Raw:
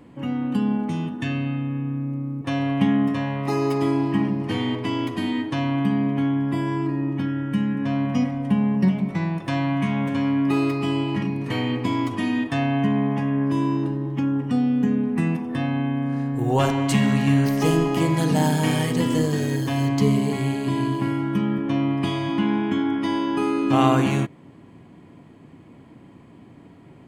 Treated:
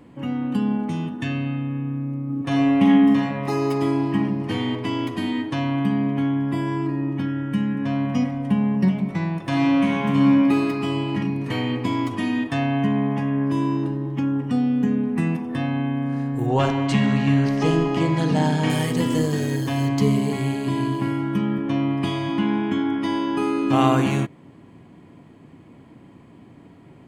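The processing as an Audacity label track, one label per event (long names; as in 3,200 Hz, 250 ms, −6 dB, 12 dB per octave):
2.250000	3.230000	thrown reverb, RT60 0.85 s, DRR −1.5 dB
9.460000	10.280000	thrown reverb, RT60 2.5 s, DRR −2.5 dB
16.460000	18.700000	low-pass filter 5,300 Hz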